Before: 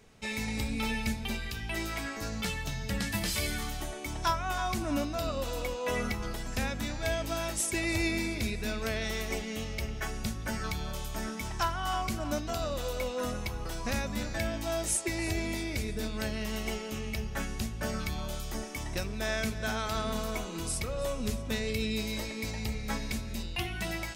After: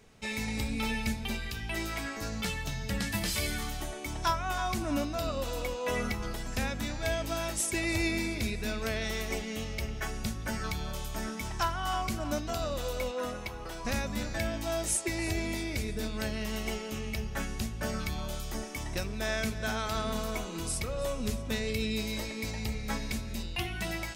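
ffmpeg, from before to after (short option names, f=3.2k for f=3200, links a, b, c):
-filter_complex "[0:a]asettb=1/sr,asplit=3[a][b][c];[a]atrim=end=13.114[d];[b]atrim=start=13.11:end=13.85,asetpts=PTS-STARTPTS,afade=t=in:d=0.004:c=qsin,afade=t=out:st=0.736:d=0.004:c=qsin,bass=f=250:g=-7,treble=f=4k:g=-5[e];[c]atrim=start=13.846[f];[d][e]acrossfade=d=0.004:c1=hsin:c2=qsin[g];[g][f]acrossfade=d=0.004:c1=qsin:c2=hsin"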